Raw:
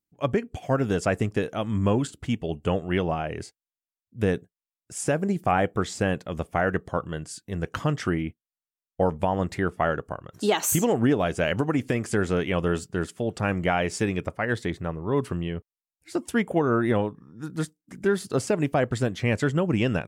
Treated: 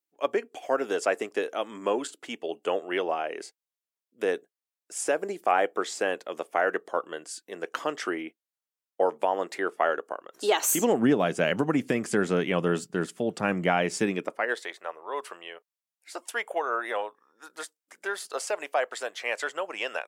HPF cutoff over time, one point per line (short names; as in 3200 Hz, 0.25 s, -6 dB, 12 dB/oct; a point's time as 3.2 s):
HPF 24 dB/oct
10.58 s 350 Hz
11.06 s 160 Hz
14.04 s 160 Hz
14.68 s 570 Hz